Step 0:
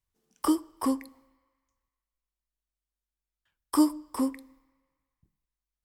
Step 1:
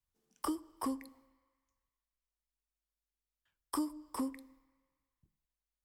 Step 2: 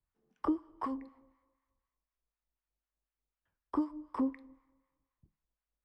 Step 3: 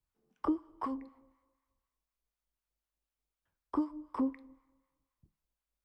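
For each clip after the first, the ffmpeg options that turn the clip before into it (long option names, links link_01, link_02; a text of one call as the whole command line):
ffmpeg -i in.wav -filter_complex "[0:a]acrossover=split=150[link_01][link_02];[link_02]acompressor=threshold=-29dB:ratio=6[link_03];[link_01][link_03]amix=inputs=2:normalize=0,volume=-4.5dB" out.wav
ffmpeg -i in.wav -filter_complex "[0:a]lowpass=1800,acrossover=split=870[link_01][link_02];[link_01]aeval=exprs='val(0)*(1-0.7/2+0.7/2*cos(2*PI*4*n/s))':channel_layout=same[link_03];[link_02]aeval=exprs='val(0)*(1-0.7/2-0.7/2*cos(2*PI*4*n/s))':channel_layout=same[link_04];[link_03][link_04]amix=inputs=2:normalize=0,volume=6dB" out.wav
ffmpeg -i in.wav -af "equalizer=frequency=1800:width_type=o:width=0.22:gain=-3.5" out.wav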